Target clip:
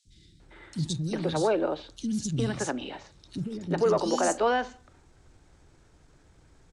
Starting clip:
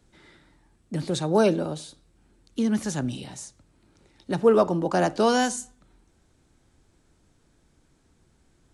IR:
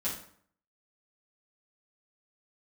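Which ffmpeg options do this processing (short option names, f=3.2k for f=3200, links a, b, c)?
-filter_complex "[0:a]asplit=2[a][b];[b]asoftclip=type=tanh:threshold=-16dB,volume=-5dB[c];[a][c]amix=inputs=2:normalize=0,alimiter=limit=-17dB:level=0:latency=1:release=173,lowpass=7.1k,equalizer=f=220:w=2:g=-4,atempo=1.3,acrossover=split=250|3500[d][e][f];[d]adelay=50[g];[e]adelay=400[h];[g][h][f]amix=inputs=3:normalize=0,volume=2.5dB"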